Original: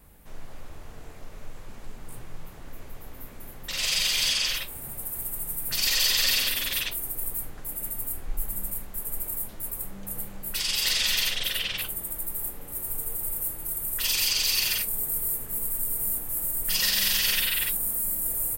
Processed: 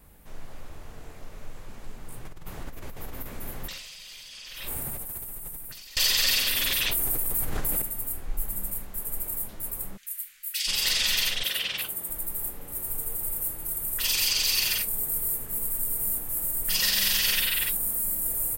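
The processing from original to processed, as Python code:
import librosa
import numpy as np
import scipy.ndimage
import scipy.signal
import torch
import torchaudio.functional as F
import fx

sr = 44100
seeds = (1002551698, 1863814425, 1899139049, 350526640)

y = fx.over_compress(x, sr, threshold_db=-38.0, ratio=-1.0, at=(2.25, 5.97))
y = fx.env_flatten(y, sr, amount_pct=100, at=(6.49, 7.82))
y = fx.cheby2_highpass(y, sr, hz=900.0, order=4, stop_db=40, at=(9.96, 10.66), fade=0.02)
y = fx.highpass(y, sr, hz=200.0, slope=6, at=(11.43, 12.09))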